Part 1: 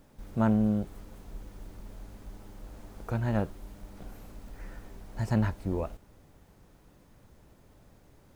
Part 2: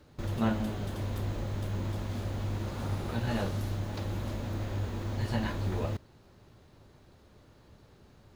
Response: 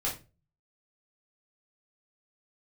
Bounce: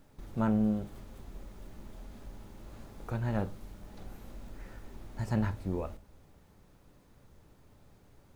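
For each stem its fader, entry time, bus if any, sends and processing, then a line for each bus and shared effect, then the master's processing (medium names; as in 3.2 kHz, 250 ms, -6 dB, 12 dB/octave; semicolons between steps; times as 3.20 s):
-4.5 dB, 0.00 s, send -15 dB, none
-12.0 dB, 0.00 s, polarity flipped, no send, compression, threshold -37 dBFS, peak gain reduction 14 dB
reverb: on, RT60 0.30 s, pre-delay 5 ms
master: none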